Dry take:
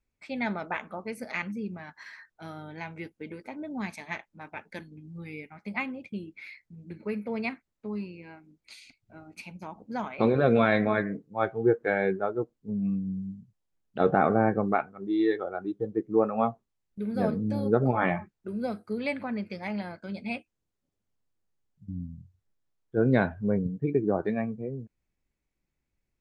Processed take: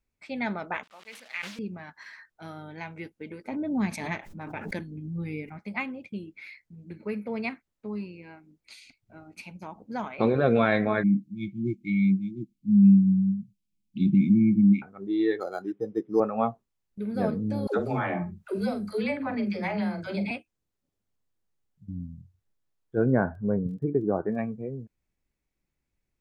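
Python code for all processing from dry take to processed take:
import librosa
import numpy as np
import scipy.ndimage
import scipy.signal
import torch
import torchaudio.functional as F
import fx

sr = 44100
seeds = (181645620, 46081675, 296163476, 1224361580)

y = fx.chain(x, sr, fx.delta_hold(step_db=-45.0),
    fx.bandpass_q(hz=3000.0, q=1.1),
    fx.sustainer(db_per_s=74.0), at=(0.83, 1.59))
y = fx.chain(y, sr, fx.low_shelf(hz=470.0, db=9.5),
    fx.pre_swell(db_per_s=50.0), at=(3.48, 5.63))
y = fx.chain(y, sr, fx.brickwall_bandstop(low_hz=350.0, high_hz=2100.0),
    fx.peak_eq(hz=200.0, db=13.5, octaves=0.38), at=(11.03, 14.82))
y = fx.chain(y, sr, fx.highpass(hz=150.0, slope=12),
    fx.high_shelf(hz=2900.0, db=10.0),
    fx.resample_linear(factor=8), at=(15.4, 16.2))
y = fx.chain(y, sr, fx.doubler(ms=44.0, db=-10),
    fx.dispersion(late='lows', ms=127.0, hz=310.0),
    fx.band_squash(depth_pct=100), at=(17.67, 20.31))
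y = fx.steep_lowpass(y, sr, hz=1600.0, slope=36, at=(23.05, 24.37), fade=0.02)
y = fx.dmg_crackle(y, sr, seeds[0], per_s=16.0, level_db=-52.0, at=(23.05, 24.37), fade=0.02)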